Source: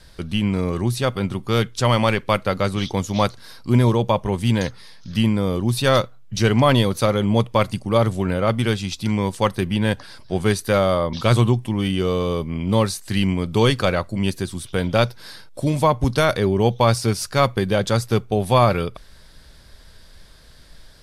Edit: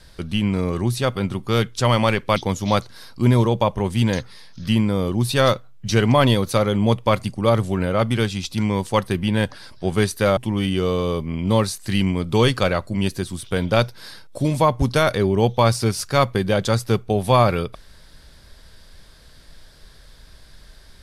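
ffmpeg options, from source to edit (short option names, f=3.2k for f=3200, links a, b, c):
-filter_complex "[0:a]asplit=3[a][b][c];[a]atrim=end=2.362[d];[b]atrim=start=2.838:end=10.852[e];[c]atrim=start=11.588[f];[d][e]acrossfade=d=0.004:c1=hsin:c2=hsin[g];[g][f]acrossfade=d=0.004:c1=hsin:c2=hsin"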